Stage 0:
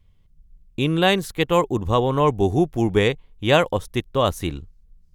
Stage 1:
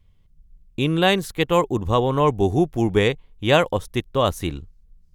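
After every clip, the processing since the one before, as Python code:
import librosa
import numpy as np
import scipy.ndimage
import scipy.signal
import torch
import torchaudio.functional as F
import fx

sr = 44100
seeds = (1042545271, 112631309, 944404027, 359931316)

y = x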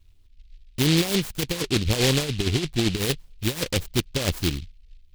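y = fx.over_compress(x, sr, threshold_db=-20.0, ratio=-0.5)
y = fx.env_flanger(y, sr, rest_ms=3.1, full_db=-16.5)
y = fx.noise_mod_delay(y, sr, seeds[0], noise_hz=3200.0, depth_ms=0.26)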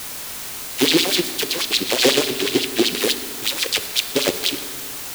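y = fx.filter_lfo_highpass(x, sr, shape='sine', hz=8.1, low_hz=300.0, high_hz=4200.0, q=2.4)
y = fx.quant_dither(y, sr, seeds[1], bits=6, dither='triangular')
y = fx.rev_fdn(y, sr, rt60_s=2.1, lf_ratio=1.2, hf_ratio=0.75, size_ms=23.0, drr_db=10.5)
y = y * 10.0 ** (4.5 / 20.0)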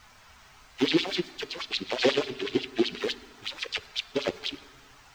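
y = fx.bin_expand(x, sr, power=1.5)
y = fx.air_absorb(y, sr, metres=190.0)
y = y * 10.0 ** (-4.0 / 20.0)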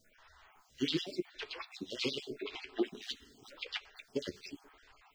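y = fx.spec_dropout(x, sr, seeds[2], share_pct=31)
y = fx.doubler(y, sr, ms=14.0, db=-12.0)
y = fx.stagger_phaser(y, sr, hz=0.87)
y = y * 10.0 ** (-5.0 / 20.0)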